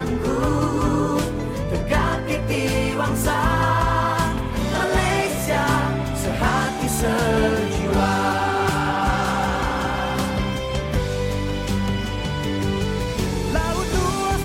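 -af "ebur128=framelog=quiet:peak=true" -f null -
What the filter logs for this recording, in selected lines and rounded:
Integrated loudness:
  I:         -21.7 LUFS
  Threshold: -31.7 LUFS
Loudness range:
  LRA:         3.2 LU
  Threshold: -41.5 LUFS
  LRA low:   -23.8 LUFS
  LRA high:  -20.5 LUFS
True peak:
  Peak:       -6.0 dBFS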